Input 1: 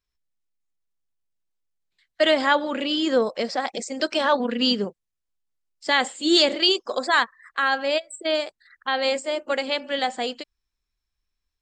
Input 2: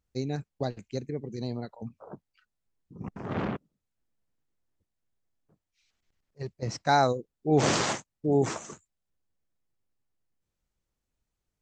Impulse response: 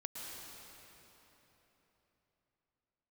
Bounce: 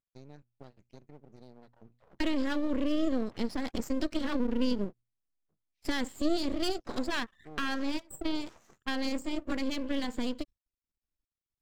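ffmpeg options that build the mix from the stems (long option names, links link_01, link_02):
-filter_complex "[0:a]agate=range=-15dB:threshold=-44dB:ratio=16:detection=peak,lowshelf=frequency=400:width_type=q:width=3:gain=10.5,volume=-3.5dB[link_01];[1:a]lowpass=5600,acompressor=threshold=-33dB:ratio=3,volume=-12.5dB[link_02];[link_01][link_02]amix=inputs=2:normalize=0,bandreject=frequency=60:width_type=h:width=6,bandreject=frequency=120:width_type=h:width=6,aeval=exprs='max(val(0),0)':channel_layout=same,acompressor=threshold=-28dB:ratio=3"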